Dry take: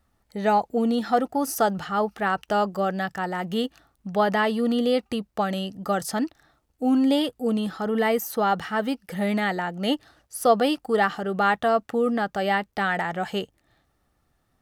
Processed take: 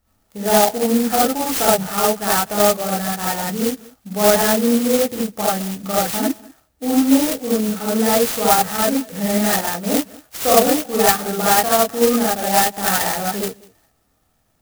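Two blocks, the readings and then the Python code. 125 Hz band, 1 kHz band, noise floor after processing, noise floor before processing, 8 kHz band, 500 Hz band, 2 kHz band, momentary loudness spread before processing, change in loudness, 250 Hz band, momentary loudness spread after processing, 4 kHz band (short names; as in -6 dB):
+5.0 dB, +5.0 dB, -64 dBFS, -71 dBFS, +19.0 dB, +6.0 dB, +3.5 dB, 7 LU, +7.5 dB, +5.5 dB, 8 LU, +9.0 dB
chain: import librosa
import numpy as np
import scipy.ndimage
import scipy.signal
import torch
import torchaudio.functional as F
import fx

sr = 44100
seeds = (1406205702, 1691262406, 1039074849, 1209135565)

y = fx.high_shelf(x, sr, hz=6500.0, db=7.0)
y = y + 10.0 ** (-23.0 / 20.0) * np.pad(y, (int(196 * sr / 1000.0), 0))[:len(y)]
y = fx.rev_gated(y, sr, seeds[0], gate_ms=100, shape='rising', drr_db=-7.5)
y = fx.clock_jitter(y, sr, seeds[1], jitter_ms=0.11)
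y = y * 10.0 ** (-2.0 / 20.0)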